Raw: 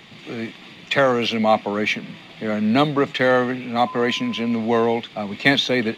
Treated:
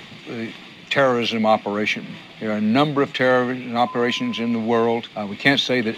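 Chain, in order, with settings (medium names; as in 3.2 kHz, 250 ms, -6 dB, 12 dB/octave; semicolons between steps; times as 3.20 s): reverse; upward compressor, threshold -30 dBFS; reverse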